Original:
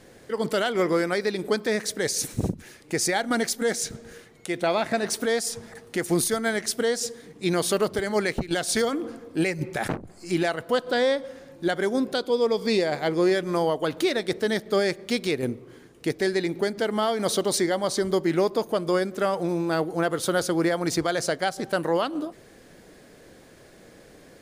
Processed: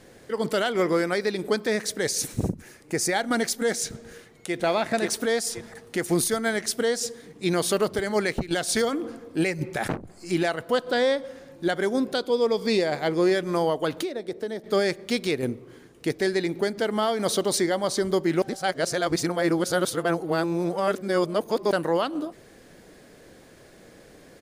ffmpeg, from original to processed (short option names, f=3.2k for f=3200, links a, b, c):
-filter_complex "[0:a]asettb=1/sr,asplit=3[a][b][c];[a]atrim=end=2.434[d];[b]atrim=start=2.43:end=3.11,asetpts=PTS-STARTPTS,afade=t=in:d=0.004:c=qsin,afade=t=out:st=0.676:d=0.004:c=qsin,equalizer=f=3.5k:t=o:w=0.93:g=-6[e];[c]atrim=start=3.106[f];[d][e]acrossfade=d=0.004:c1=hsin:c2=qsin[g];[g][f]acrossfade=d=0.004:c1=qsin:c2=hsin,asplit=2[h][i];[i]afade=t=in:st=4.06:d=0.01,afade=t=out:st=4.55:d=0.01,aecho=0:1:530|1060|1590|2120:0.794328|0.238298|0.0714895|0.0214469[j];[h][j]amix=inputs=2:normalize=0,asettb=1/sr,asplit=3[k][l][m];[k]atrim=end=14.024[n];[l]atrim=start=14.02:end=14.64,asetpts=PTS-STARTPTS,afade=t=in:d=0.004:c=qsin,afade=t=out:st=0.616:d=0.004:c=qsin,acrossover=split=300|760[o][p][q];[o]acompressor=threshold=-43dB:ratio=4[r];[p]acompressor=threshold=-29dB:ratio=4[s];[q]acompressor=threshold=-45dB:ratio=4[t];[r][s][t]amix=inputs=3:normalize=0[u];[m]atrim=start=14.636[v];[n][u]acrossfade=d=0.004:c1=hsin:c2=qsin[w];[w][v]acrossfade=d=0.004:c1=qsin:c2=hsin,asplit=3[x][y][z];[x]atrim=end=18.422[aa];[y]atrim=start=18.418:end=21.712,asetpts=PTS-STARTPTS,areverse[ab];[z]atrim=start=21.708[ac];[aa][ab]acrossfade=d=0.004:c1=hsin:c2=hsin[ad];[ad][ac]acrossfade=d=0.004:c1=hsin:c2=hsin"